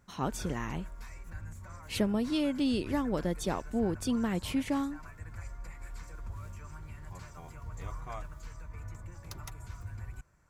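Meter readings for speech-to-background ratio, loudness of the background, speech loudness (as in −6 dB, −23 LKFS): 13.5 dB, −46.0 LKFS, −32.5 LKFS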